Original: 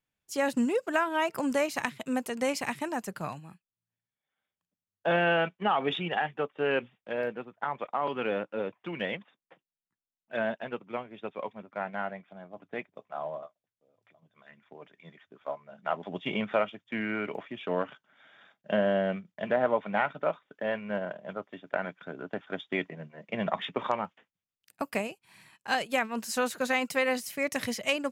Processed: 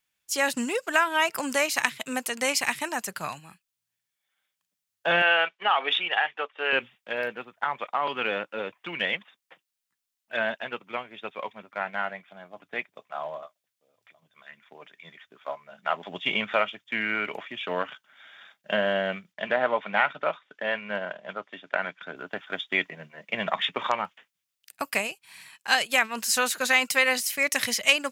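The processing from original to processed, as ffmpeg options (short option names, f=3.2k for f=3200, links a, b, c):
-filter_complex "[0:a]asettb=1/sr,asplit=3[a][b][c];[a]atrim=end=5.224[d];[b]atrim=start=5.22:end=6.73,asetpts=PTS-STARTPTS,afade=t=in:d=0.004:c=qsin,afade=t=out:st=1.506:d=0.004:c=qsin,highpass=460,lowpass=5.2k[e];[c]atrim=start=6.726[f];[d][e]acrossfade=d=0.004:c1=hsin:c2=qsin[g];[g][f]acrossfade=d=0.004:c1=qsin:c2=hsin,asettb=1/sr,asplit=3[h][i][j];[h]atrim=end=19.334[k];[i]atrim=start=19.33:end=22.16,asetpts=PTS-STARTPTS,afade=t=in:d=0.004:c=qsin,afade=t=out:st=2.826:d=0.004:c=qsin,highpass=110,lowpass=6.6k[l];[j]atrim=start=22.156[m];[k][l]acrossfade=d=0.004:c1=hsin:c2=qsin[n];[n][m]acrossfade=d=0.004:c1=qsin:c2=hsin,tiltshelf=f=930:g=-8,volume=3.5dB"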